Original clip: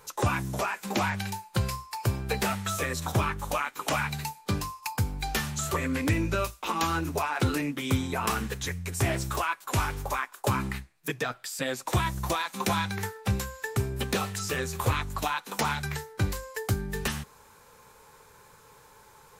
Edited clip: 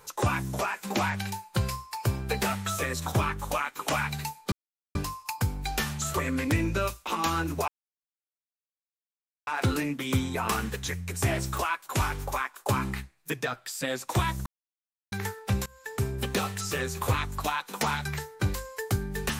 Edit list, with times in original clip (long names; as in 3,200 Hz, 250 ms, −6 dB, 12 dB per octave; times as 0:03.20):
0:04.52: splice in silence 0.43 s
0:07.25: splice in silence 1.79 s
0:12.24–0:12.90: silence
0:13.44–0:13.84: fade in linear, from −22.5 dB